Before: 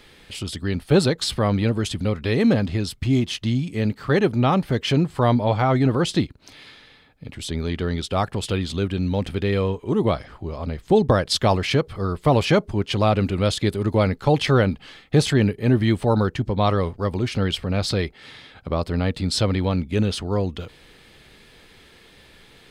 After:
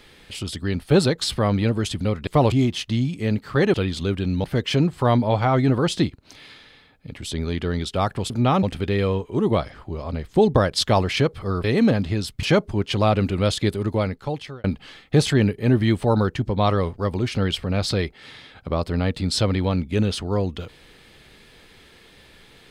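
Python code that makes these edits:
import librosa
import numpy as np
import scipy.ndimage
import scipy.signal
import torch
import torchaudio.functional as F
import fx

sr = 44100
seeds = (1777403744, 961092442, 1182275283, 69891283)

y = fx.edit(x, sr, fx.swap(start_s=2.27, length_s=0.79, other_s=12.18, other_length_s=0.25),
    fx.swap(start_s=4.28, length_s=0.33, other_s=8.47, other_length_s=0.7),
    fx.fade_out_span(start_s=13.68, length_s=0.96), tone=tone)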